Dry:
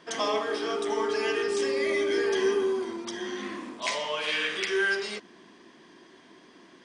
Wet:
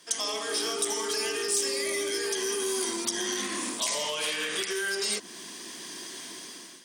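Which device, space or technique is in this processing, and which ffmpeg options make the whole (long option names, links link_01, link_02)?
FM broadcast chain: -filter_complex "[0:a]highpass=46,dynaudnorm=framelen=260:gausssize=5:maxgain=15dB,acrossover=split=440|1400[link_01][link_02][link_03];[link_01]acompressor=threshold=-25dB:ratio=4[link_04];[link_02]acompressor=threshold=-26dB:ratio=4[link_05];[link_03]acompressor=threshold=-32dB:ratio=4[link_06];[link_04][link_05][link_06]amix=inputs=3:normalize=0,aemphasis=mode=production:type=75fm,alimiter=limit=-15.5dB:level=0:latency=1:release=110,asoftclip=type=hard:threshold=-18.5dB,lowpass=frequency=15000:width=0.5412,lowpass=frequency=15000:width=1.3066,aemphasis=mode=production:type=75fm,volume=-7.5dB"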